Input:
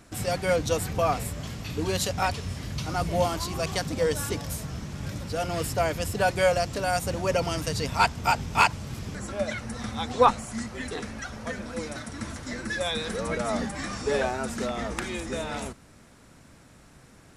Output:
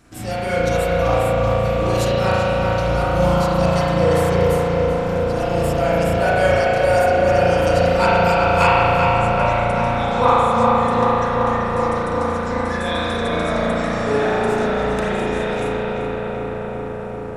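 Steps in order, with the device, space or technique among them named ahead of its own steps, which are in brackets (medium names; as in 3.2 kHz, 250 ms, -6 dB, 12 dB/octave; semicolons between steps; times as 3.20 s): dub delay into a spring reverb (filtered feedback delay 384 ms, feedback 83%, low-pass 2.8 kHz, level -3.5 dB; spring tank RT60 2.5 s, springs 35 ms, chirp 45 ms, DRR -8.5 dB); trim -2 dB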